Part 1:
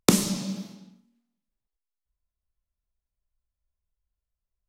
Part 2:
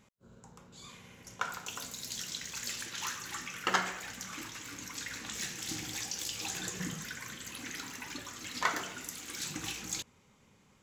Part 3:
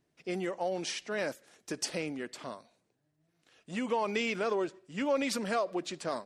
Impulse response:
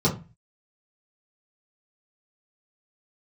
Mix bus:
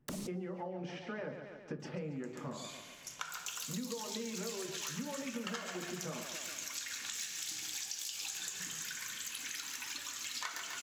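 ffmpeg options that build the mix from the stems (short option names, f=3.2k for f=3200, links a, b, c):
-filter_complex "[0:a]lowshelf=f=350:g=10,acompressor=threshold=-20dB:ratio=8,aeval=exprs='0.0631*(abs(mod(val(0)/0.0631+3,4)-2)-1)':c=same,volume=-8dB[a];[1:a]tiltshelf=f=970:g=-9.5,bandreject=f=2k:w=15,adelay=1800,volume=-4dB,asplit=2[b][c];[c]volume=-10dB[d];[2:a]lowpass=2.1k,acompressor=threshold=-32dB:ratio=6,volume=-1dB,asplit=4[e][f][g][h];[f]volume=-17dB[i];[g]volume=-9dB[j];[h]apad=whole_len=206539[k];[a][k]sidechaincompress=threshold=-55dB:ratio=8:attack=16:release=176[l];[3:a]atrim=start_sample=2205[m];[i][m]afir=irnorm=-1:irlink=0[n];[d][j]amix=inputs=2:normalize=0,aecho=0:1:140|280|420|560|700|840|980|1120:1|0.56|0.314|0.176|0.0983|0.0551|0.0308|0.0173[o];[l][b][e][n][o]amix=inputs=5:normalize=0,acompressor=threshold=-38dB:ratio=6"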